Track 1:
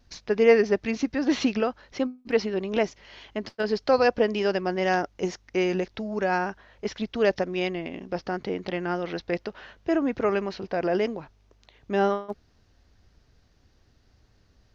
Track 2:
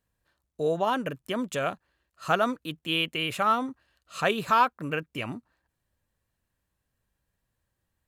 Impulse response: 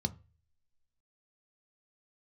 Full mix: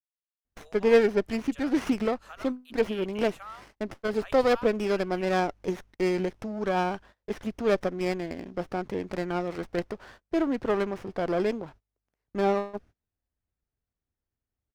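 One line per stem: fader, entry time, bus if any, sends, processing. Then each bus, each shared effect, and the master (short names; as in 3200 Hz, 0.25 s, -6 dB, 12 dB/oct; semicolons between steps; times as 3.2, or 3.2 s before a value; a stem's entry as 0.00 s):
-2.0 dB, 0.45 s, no send, running maximum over 9 samples
-15.0 dB, 0.00 s, no send, Bessel high-pass 970 Hz, order 8; limiter -18.5 dBFS, peak gain reduction 6.5 dB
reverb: off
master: gate -49 dBFS, range -25 dB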